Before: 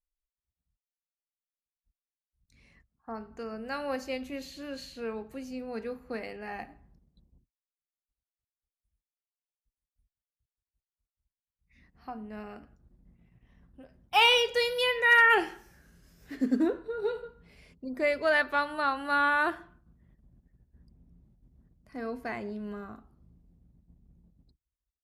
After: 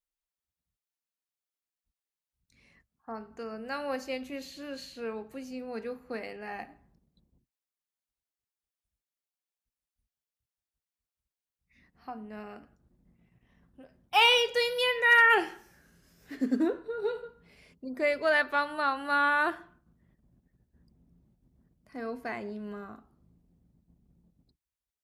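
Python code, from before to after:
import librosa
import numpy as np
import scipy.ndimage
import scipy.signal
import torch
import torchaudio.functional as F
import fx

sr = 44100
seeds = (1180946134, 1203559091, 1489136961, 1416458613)

y = fx.low_shelf(x, sr, hz=88.0, db=-11.5)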